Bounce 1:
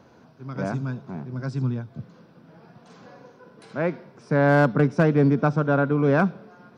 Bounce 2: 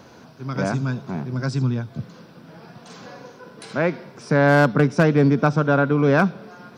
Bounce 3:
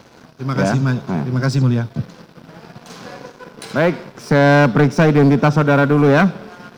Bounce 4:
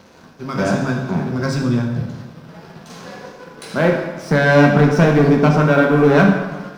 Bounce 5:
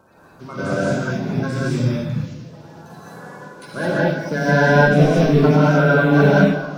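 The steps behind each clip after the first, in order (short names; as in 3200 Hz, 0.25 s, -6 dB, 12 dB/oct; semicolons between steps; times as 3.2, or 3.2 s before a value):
high shelf 2400 Hz +8.5 dB; in parallel at 0 dB: compressor, threshold -27 dBFS, peak gain reduction 13.5 dB
sample leveller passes 2
plate-style reverb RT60 1.2 s, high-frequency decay 0.75×, DRR 0 dB; gain -3 dB
bin magnitudes rounded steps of 30 dB; non-linear reverb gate 0.24 s rising, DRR -6 dB; gain -8 dB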